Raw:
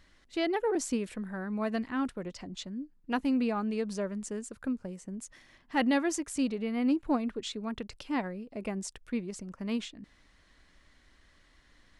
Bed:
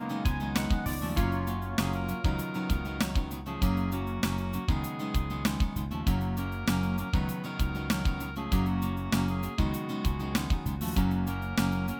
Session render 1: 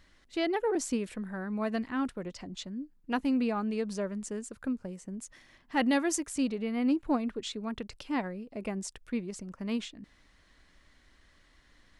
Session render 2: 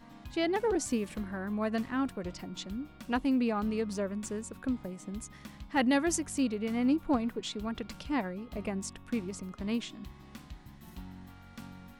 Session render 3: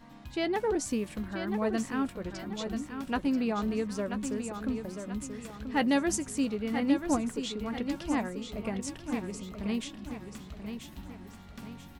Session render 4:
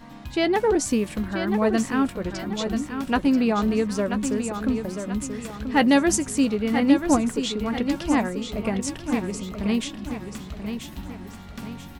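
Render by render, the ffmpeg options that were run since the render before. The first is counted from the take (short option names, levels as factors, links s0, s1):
-filter_complex "[0:a]asettb=1/sr,asplit=3[s0][s1][s2];[s0]atrim=end=5.854[s3];[s1]atrim=start=5.85:end=6.27,asetpts=PTS-STARTPTS,afade=t=in:d=0.004:c=qsin,afade=t=out:st=0.416:d=0.004:c=qsin,highshelf=f=8100:g=9.5[s4];[s2]atrim=start=6.266[s5];[s3][s4]acrossfade=d=0.004:c1=hsin:c2=qsin[s6];[s6][s5]acrossfade=d=0.004:c1=qsin:c2=hsin"
-filter_complex "[1:a]volume=0.106[s0];[0:a][s0]amix=inputs=2:normalize=0"
-filter_complex "[0:a]asplit=2[s0][s1];[s1]adelay=14,volume=0.2[s2];[s0][s2]amix=inputs=2:normalize=0,aecho=1:1:985|1970|2955|3940|4925:0.398|0.167|0.0702|0.0295|0.0124"
-af "volume=2.66"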